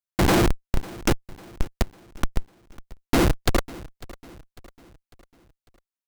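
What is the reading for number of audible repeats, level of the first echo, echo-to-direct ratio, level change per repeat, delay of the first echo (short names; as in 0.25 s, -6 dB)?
3, -20.0 dB, -19.0 dB, -6.5 dB, 0.549 s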